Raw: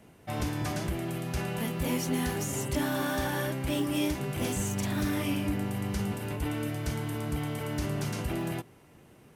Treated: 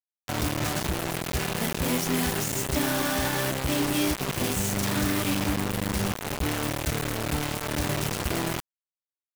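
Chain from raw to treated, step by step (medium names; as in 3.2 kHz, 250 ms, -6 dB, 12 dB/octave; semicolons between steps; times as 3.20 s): bit crusher 5-bit; trim +2.5 dB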